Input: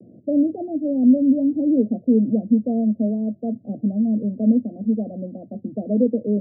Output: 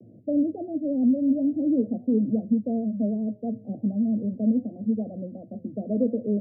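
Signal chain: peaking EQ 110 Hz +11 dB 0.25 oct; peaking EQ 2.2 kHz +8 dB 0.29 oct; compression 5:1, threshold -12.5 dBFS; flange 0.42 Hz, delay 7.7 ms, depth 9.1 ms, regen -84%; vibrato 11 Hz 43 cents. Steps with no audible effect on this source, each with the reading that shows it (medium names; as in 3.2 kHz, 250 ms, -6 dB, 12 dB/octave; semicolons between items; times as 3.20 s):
peaking EQ 2.2 kHz: input has nothing above 720 Hz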